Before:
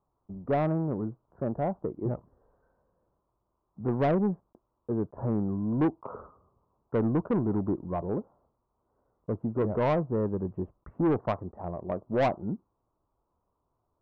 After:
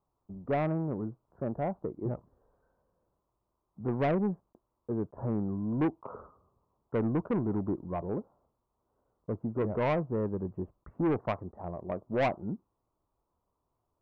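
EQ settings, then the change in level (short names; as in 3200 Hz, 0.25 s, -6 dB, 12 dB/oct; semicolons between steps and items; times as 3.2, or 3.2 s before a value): dynamic EQ 2300 Hz, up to +6 dB, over -51 dBFS, Q 2.1; -3.0 dB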